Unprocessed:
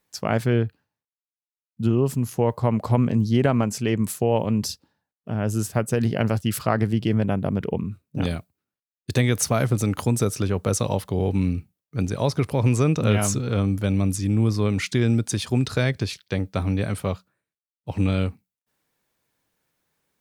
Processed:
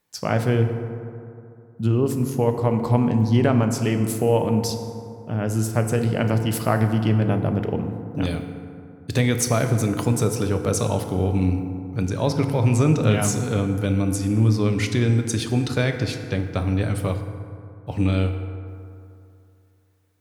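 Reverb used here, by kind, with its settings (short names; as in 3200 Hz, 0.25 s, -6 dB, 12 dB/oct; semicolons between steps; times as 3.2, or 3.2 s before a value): FDN reverb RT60 2.6 s, high-frequency decay 0.4×, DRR 5.5 dB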